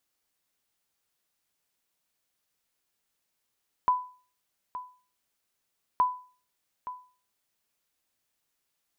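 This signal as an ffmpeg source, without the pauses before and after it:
-f lavfi -i "aevalsrc='0.158*(sin(2*PI*999*mod(t,2.12))*exp(-6.91*mod(t,2.12)/0.4)+0.2*sin(2*PI*999*max(mod(t,2.12)-0.87,0))*exp(-6.91*max(mod(t,2.12)-0.87,0)/0.4))':d=4.24:s=44100"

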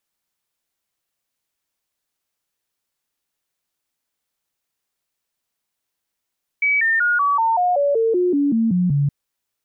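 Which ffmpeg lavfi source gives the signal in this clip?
-f lavfi -i "aevalsrc='0.188*clip(min(mod(t,0.19),0.19-mod(t,0.19))/0.005,0,1)*sin(2*PI*2280*pow(2,-floor(t/0.19)/3)*mod(t,0.19))':d=2.47:s=44100"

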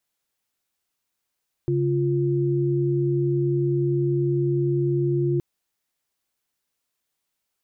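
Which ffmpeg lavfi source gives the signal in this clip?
-f lavfi -i "aevalsrc='0.0794*(sin(2*PI*138.59*t)+sin(2*PI*349.23*t))':d=3.72:s=44100"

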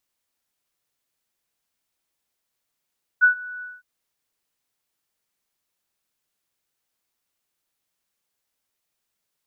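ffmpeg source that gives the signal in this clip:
-f lavfi -i "aevalsrc='0.335*sin(2*PI*1480*t)':d=0.611:s=44100,afade=t=in:d=0.028,afade=t=out:st=0.028:d=0.105:silence=0.0794,afade=t=out:st=0.41:d=0.201"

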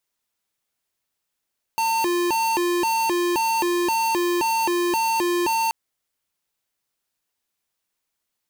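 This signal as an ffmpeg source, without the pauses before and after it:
-f lavfi -i "aevalsrc='0.0841*(2*lt(mod((627*t+277/1.9*(0.5-abs(mod(1.9*t,1)-0.5))),1),0.5)-1)':d=3.93:s=44100"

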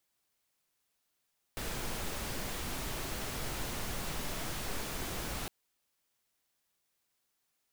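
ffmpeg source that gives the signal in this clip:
-f lavfi -i "anoisesrc=c=pink:a=0.0684:d=3.91:r=44100:seed=1"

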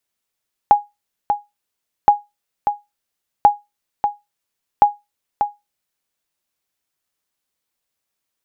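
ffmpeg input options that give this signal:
-f lavfi -i "aevalsrc='0.841*(sin(2*PI*825*mod(t,1.37))*exp(-6.91*mod(t,1.37)/0.2)+0.422*sin(2*PI*825*max(mod(t,1.37)-0.59,0))*exp(-6.91*max(mod(t,1.37)-0.59,0)/0.2))':d=5.48:s=44100"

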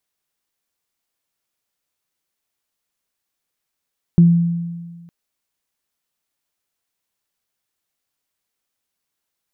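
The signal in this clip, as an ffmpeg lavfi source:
-f lavfi -i "aevalsrc='0.562*pow(10,-3*t/1.55)*sin(2*PI*170*t)+0.075*pow(10,-3*t/0.28)*sin(2*PI*340*t)':d=0.91:s=44100"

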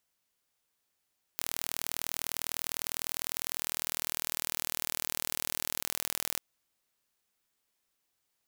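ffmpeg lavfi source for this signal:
-f lavfi -i "aevalsrc='0.531*eq(mod(n,1105),0)':d=5:s=44100"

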